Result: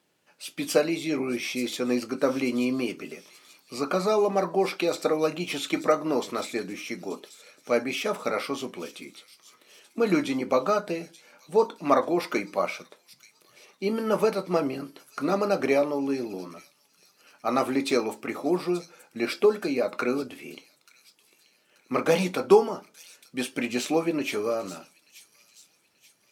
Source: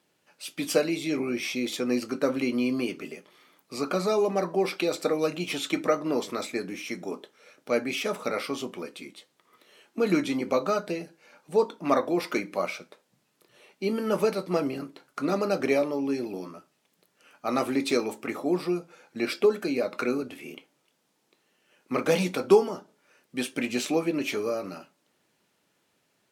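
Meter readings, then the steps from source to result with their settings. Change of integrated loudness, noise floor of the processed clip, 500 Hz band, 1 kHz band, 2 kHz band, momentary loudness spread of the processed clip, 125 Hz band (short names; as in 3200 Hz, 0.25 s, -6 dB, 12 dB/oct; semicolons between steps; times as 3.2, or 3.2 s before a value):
+1.0 dB, -65 dBFS, +1.5 dB, +3.0 dB, +1.0 dB, 16 LU, 0.0 dB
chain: dynamic EQ 910 Hz, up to +4 dB, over -36 dBFS, Q 1; on a send: thin delay 0.883 s, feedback 43%, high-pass 5000 Hz, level -9 dB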